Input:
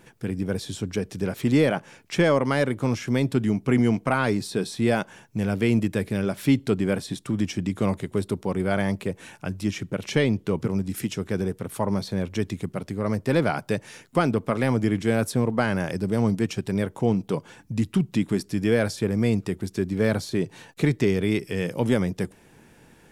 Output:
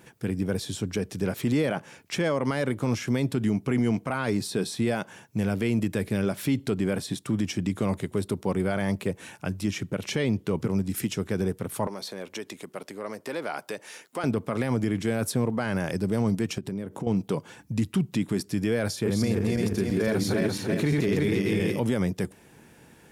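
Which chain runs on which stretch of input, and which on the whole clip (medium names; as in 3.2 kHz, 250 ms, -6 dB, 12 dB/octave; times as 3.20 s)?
11.87–14.24 s: compression 3:1, threshold -26 dBFS + high-pass 380 Hz
16.58–17.07 s: compression 16:1, threshold -35 dBFS + peaking EQ 250 Hz +9 dB 2.4 oct
18.89–21.80 s: backward echo that repeats 169 ms, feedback 60%, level 0 dB + band-stop 7.9 kHz, Q 15
whole clip: high-pass 52 Hz; treble shelf 11 kHz +5 dB; peak limiter -16 dBFS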